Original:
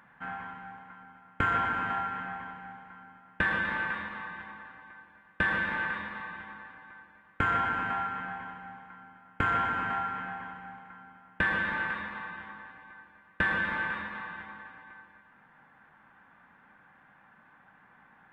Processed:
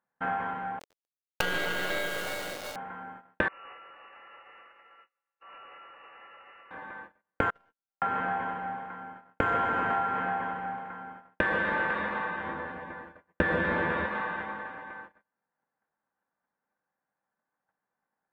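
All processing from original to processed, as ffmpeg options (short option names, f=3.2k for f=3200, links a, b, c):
-filter_complex "[0:a]asettb=1/sr,asplit=3[a][b][c];[a]atrim=end=0.794[d];[b]atrim=start=0.79:end=2.76,asetpts=PTS-STARTPTS,afade=t=in:d=0.004:c=qsin,afade=t=out:st=1.966:d=0.004:c=qsin,lowshelf=f=250:g=-2,lowpass=f=2.6k:t=q:w=0.5098,lowpass=f=2.6k:t=q:w=0.6013,lowpass=f=2.6k:t=q:w=0.9,lowpass=f=2.6k:t=q:w=2.563,afreqshift=-3000,acrusher=bits=4:dc=4:mix=0:aa=0.000001[e];[c]atrim=start=2.756[f];[d][e]acrossfade=d=0.004:c1=hsin:c2=qsin[g];[g][f]acrossfade=d=0.004:c1=qsin:c2=hsin,asettb=1/sr,asplit=3[h][i][j];[h]atrim=end=3.484[k];[i]atrim=start=3.48:end=6.71,asetpts=PTS-STARTPTS,afade=t=in:d=0.004:c=qsin,afade=t=out:st=3.226:d=0.004:c=qsin,acompressor=threshold=-44dB:ratio=8:attack=3.2:release=140:knee=1:detection=peak,aeval=exprs='(tanh(355*val(0)+0.35)-tanh(0.35))/355':c=same,lowpass=f=2.5k:t=q:w=0.5098,lowpass=f=2.5k:t=q:w=0.6013,lowpass=f=2.5k:t=q:w=0.9,lowpass=f=2.5k:t=q:w=2.563,afreqshift=-2900[l];[j]atrim=start=6.706[m];[k][l]acrossfade=d=0.004:c1=hsin:c2=qsin[n];[n][m]acrossfade=d=0.004:c1=qsin:c2=hsin,asettb=1/sr,asplit=3[o][p][q];[o]atrim=end=7.504[r];[p]atrim=start=7.5:end=8.02,asetpts=PTS-STARTPTS,afade=t=in:d=0.004:c=qsin,afade=t=out:st=0.516:d=0.004:c=qsin,aeval=exprs='if(lt(val(0),0),0.447*val(0),val(0))':c=same,agate=range=-42dB:threshold=-25dB:ratio=16:release=100:detection=peak[s];[q]atrim=start=8.016[t];[r][s]acrossfade=d=0.004:c1=hsin:c2=qsin[u];[u][t]acrossfade=d=0.004:c1=qsin:c2=hsin,asettb=1/sr,asplit=3[v][w][x];[v]atrim=end=12.444[y];[w]atrim=start=12.44:end=14.06,asetpts=PTS-STARTPTS,afade=t=in:d=0.004:c=qsin,afade=t=out:st=1.616:d=0.004:c=qsin,lowshelf=f=470:g=8,asplit=2[z][aa];[aa]adelay=12,volume=-5dB[ab];[z][ab]amix=inputs=2:normalize=0,atrim=end_sample=71442[ac];[x]atrim=start=14.056[ad];[y][ac]acrossfade=d=0.004:c1=hsin:c2=qsin[ae];[ae][ad]acrossfade=d=0.004:c1=qsin:c2=hsin,agate=range=-36dB:threshold=-53dB:ratio=16:detection=peak,equalizer=f=510:w=0.88:g=12.5,acompressor=threshold=-30dB:ratio=3,volume=4dB"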